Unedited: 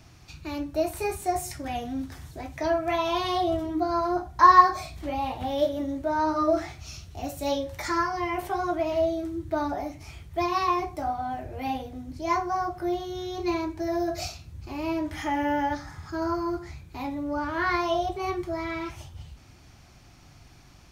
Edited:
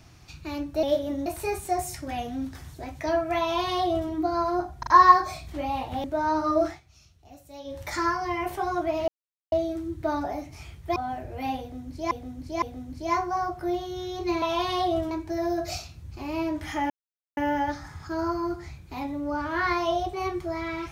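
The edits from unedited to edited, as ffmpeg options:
-filter_complex "[0:a]asplit=15[a][b][c][d][e][f][g][h][i][j][k][l][m][n][o];[a]atrim=end=0.832[p];[b]atrim=start=5.528:end=5.962[q];[c]atrim=start=0.828:end=4.402[r];[d]atrim=start=4.358:end=4.402[s];[e]atrim=start=4.358:end=5.532[t];[f]atrim=start=5.958:end=6.72,asetpts=PTS-STARTPTS,afade=t=out:st=0.622:d=0.14:silence=0.16788[u];[g]atrim=start=6.72:end=7.56,asetpts=PTS-STARTPTS,volume=-15.5dB[v];[h]atrim=start=7.56:end=9,asetpts=PTS-STARTPTS,afade=t=in:d=0.14:silence=0.16788,afade=t=out:st=1.436:d=0.004:c=hsin,apad=pad_dur=0.44[w];[i]atrim=start=9:end=10.442,asetpts=PTS-STARTPTS,afade=t=in:d=0.004:c=hsin[x];[j]atrim=start=11.168:end=12.322[y];[k]atrim=start=11.808:end=12.322[z];[l]atrim=start=11.808:end=13.612[aa];[m]atrim=start=2.978:end=3.672[ab];[n]atrim=start=13.608:end=15.4,asetpts=PTS-STARTPTS,afade=t=out:st=1.788:d=0.004:c=hsin,apad=pad_dur=0.47[ac];[o]atrim=start=15.4,asetpts=PTS-STARTPTS,afade=t=in:d=0.004:c=hsin[ad];[p][q]acrossfade=d=0.004:c1=hsin:c2=hsin[ae];[ae][r]acrossfade=d=0.004:c1=hsin:c2=hsin[af];[af][s]acrossfade=d=0.004:c1=hsin:c2=hsin[ag];[ag][t]acrossfade=d=0.004:c1=hsin:c2=hsin[ah];[u][v][w][x]concat=n=4:v=0:a=1[ai];[ah][ai]acrossfade=d=0.004:c1=hsin:c2=hsin[aj];[aj][y]acrossfade=d=0.004:c1=hsin:c2=hsin[ak];[ak][z]acrossfade=d=0.004:c1=hsin:c2=hsin[al];[al][aa]acrossfade=d=0.004:c1=hsin:c2=hsin[am];[am][ab]acrossfade=d=0.004:c1=hsin:c2=hsin[an];[ac][ad]concat=n=2:v=0:a=1[ao];[an][ao]acrossfade=d=0.004:c1=hsin:c2=hsin"

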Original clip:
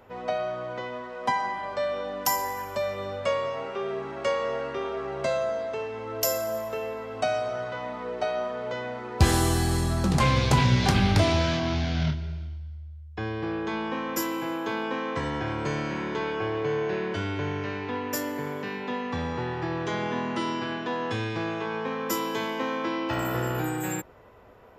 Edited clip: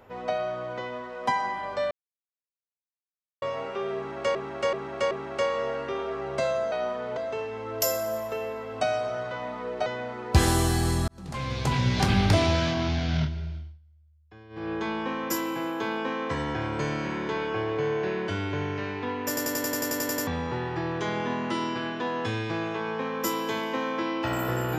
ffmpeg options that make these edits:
-filter_complex "[0:a]asplit=23[a][b][c][d][e][f][g][h][i][j][k][l][m][n][o][p][q][r][s][t][u][v][w];[a]atrim=end=1.91,asetpts=PTS-STARTPTS,afade=t=out:st=1.906:d=0.004:c=hsin[x];[b]atrim=start=1.91:end=3.42,asetpts=PTS-STARTPTS,volume=0[y];[c]atrim=start=3.42:end=4.352,asetpts=PTS-STARTPTS,afade=t=in:d=0.004:c=hsin[z];[d]atrim=start=3.968:end=4.352[aa];[e]atrim=start=3.968:end=4.352[ab];[f]atrim=start=3.968:end=5.582[ac];[g]atrim=start=8.268:end=8.722[ad];[h]atrim=start=5.578:end=8.272[ae];[i]atrim=start=8.718:end=9.94,asetpts=PTS-STARTPTS,afade=t=out:st=1.218:d=0.004:c=hsin[af];[j]atrim=start=9.94:end=12.65,asetpts=PTS-STARTPTS,afade=t=in:d=1.12,afade=t=out:st=2.47:d=0.24:silence=0.125893[ag];[k]atrim=start=12.65:end=13.35,asetpts=PTS-STARTPTS,volume=-18dB[ah];[l]atrim=start=13.35:end=18.232,asetpts=PTS-STARTPTS,afade=t=in:d=0.24:silence=0.125893[ai];[m]atrim=start=18.138:end=18.232[aj];[n]atrim=start=18.138:end=18.232[ak];[o]atrim=start=18.138:end=18.232[al];[p]atrim=start=18.138:end=18.232[am];[q]atrim=start=18.138:end=18.232[an];[r]atrim=start=18.138:end=18.232[ao];[s]atrim=start=18.138:end=18.232[ap];[t]atrim=start=18.138:end=18.232[aq];[u]atrim=start=18.138:end=18.232[ar];[v]atrim=start=18.138:end=18.232[as];[w]atrim=start=19.128[at];[x][y][z]concat=n=3:v=0:a=1[au];[au][aa]acrossfade=d=0.004:c1=hsin:c2=hsin[av];[av][ab]acrossfade=d=0.004:c1=hsin:c2=hsin[aw];[aw][ac]acrossfade=d=0.004:c1=hsin:c2=hsin[ax];[ax][ad]acrossfade=d=0.004:c1=hsin:c2=hsin[ay];[ay][ae]acrossfade=d=0.004:c1=hsin:c2=hsin[az];[af][ag][ah][ai]concat=n=4:v=0:a=1[ba];[az][ba]acrossfade=d=0.004:c1=hsin:c2=hsin[bb];[bb][aj]acrossfade=d=0.004:c1=hsin:c2=hsin[bc];[bc][ak]acrossfade=d=0.004:c1=hsin:c2=hsin[bd];[bd][al]acrossfade=d=0.004:c1=hsin:c2=hsin[be];[be][am]acrossfade=d=0.004:c1=hsin:c2=hsin[bf];[bf][an]acrossfade=d=0.004:c1=hsin:c2=hsin[bg];[bg][ao]acrossfade=d=0.004:c1=hsin:c2=hsin[bh];[bh][ap]acrossfade=d=0.004:c1=hsin:c2=hsin[bi];[bi][aq]acrossfade=d=0.004:c1=hsin:c2=hsin[bj];[bj][ar]acrossfade=d=0.004:c1=hsin:c2=hsin[bk];[bk][as]acrossfade=d=0.004:c1=hsin:c2=hsin[bl];[bl][at]acrossfade=d=0.004:c1=hsin:c2=hsin"

